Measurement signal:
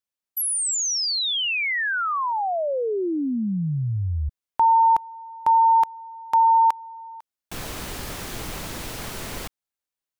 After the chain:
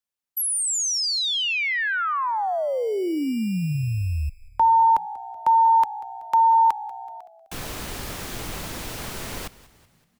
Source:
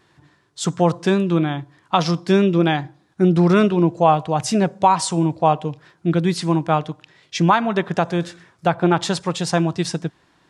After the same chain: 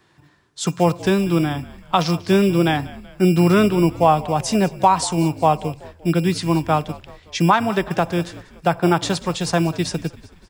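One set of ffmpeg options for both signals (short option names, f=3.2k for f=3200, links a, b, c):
-filter_complex "[0:a]acrossover=split=290|490|2400[a][b][c][d];[a]acrusher=samples=17:mix=1:aa=0.000001[e];[e][b][c][d]amix=inputs=4:normalize=0,asplit=5[f][g][h][i][j];[g]adelay=189,afreqshift=-62,volume=-19dB[k];[h]adelay=378,afreqshift=-124,volume=-24.8dB[l];[i]adelay=567,afreqshift=-186,volume=-30.7dB[m];[j]adelay=756,afreqshift=-248,volume=-36.5dB[n];[f][k][l][m][n]amix=inputs=5:normalize=0"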